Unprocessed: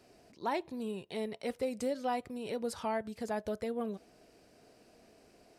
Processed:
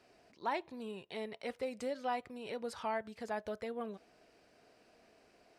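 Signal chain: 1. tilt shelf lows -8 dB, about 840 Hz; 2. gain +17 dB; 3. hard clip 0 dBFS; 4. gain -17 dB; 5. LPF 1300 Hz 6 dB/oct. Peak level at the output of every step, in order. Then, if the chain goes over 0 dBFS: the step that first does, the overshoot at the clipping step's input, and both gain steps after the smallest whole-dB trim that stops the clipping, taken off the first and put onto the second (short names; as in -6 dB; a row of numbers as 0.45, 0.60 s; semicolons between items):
-20.5, -3.5, -3.5, -20.5, -23.5 dBFS; no overload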